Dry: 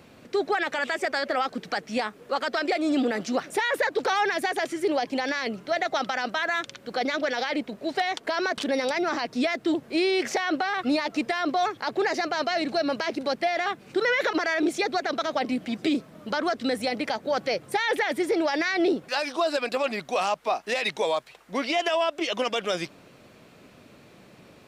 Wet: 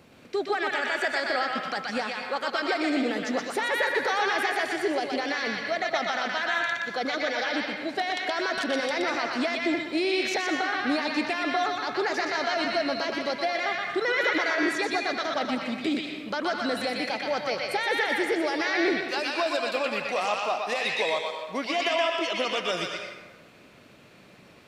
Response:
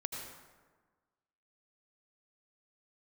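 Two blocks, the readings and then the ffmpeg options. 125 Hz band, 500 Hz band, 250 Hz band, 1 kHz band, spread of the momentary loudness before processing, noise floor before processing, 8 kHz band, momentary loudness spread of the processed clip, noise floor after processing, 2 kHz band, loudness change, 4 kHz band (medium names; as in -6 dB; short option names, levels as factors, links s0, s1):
-2.5 dB, -2.0 dB, -2.5 dB, -1.0 dB, 5 LU, -53 dBFS, -1.0 dB, 5 LU, -52 dBFS, +1.5 dB, -0.5 dB, +1.0 dB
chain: -filter_complex "[0:a]asplit=2[s0][s1];[s1]equalizer=f=2600:w=0.31:g=15[s2];[1:a]atrim=start_sample=2205,asetrate=48510,aresample=44100,adelay=122[s3];[s2][s3]afir=irnorm=-1:irlink=0,volume=0.282[s4];[s0][s4]amix=inputs=2:normalize=0,volume=0.708"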